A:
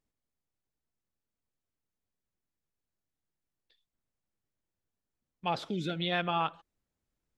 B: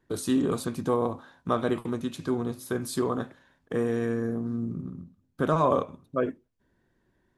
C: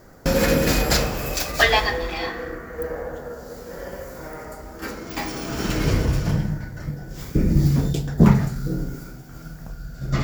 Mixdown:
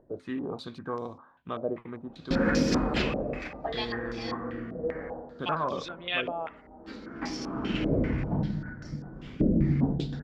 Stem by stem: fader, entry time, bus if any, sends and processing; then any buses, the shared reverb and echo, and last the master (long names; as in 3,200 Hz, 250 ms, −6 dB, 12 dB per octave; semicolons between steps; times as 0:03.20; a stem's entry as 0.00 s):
−2.0 dB, 0.00 s, no send, high-pass filter 810 Hz 6 dB per octave
−10.0 dB, 0.00 s, no send, no processing
−12.0 dB, 2.05 s, no send, parametric band 250 Hz +11.5 dB 1.1 octaves; automatic ducking −9 dB, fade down 0.35 s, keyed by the first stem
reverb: not used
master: upward compression, threshold −51 dBFS; low-pass on a step sequencer 5.1 Hz 600–5,400 Hz